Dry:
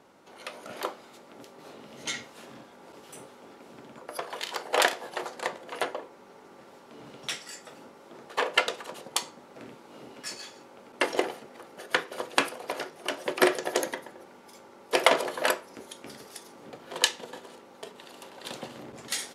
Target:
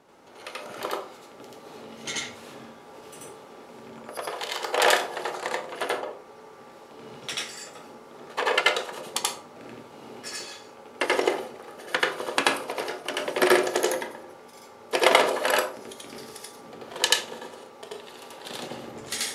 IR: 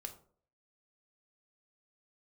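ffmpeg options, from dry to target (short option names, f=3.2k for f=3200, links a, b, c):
-filter_complex "[0:a]asplit=2[a][b];[1:a]atrim=start_sample=2205,adelay=84[c];[b][c]afir=irnorm=-1:irlink=0,volume=6.5dB[d];[a][d]amix=inputs=2:normalize=0,volume=-1dB"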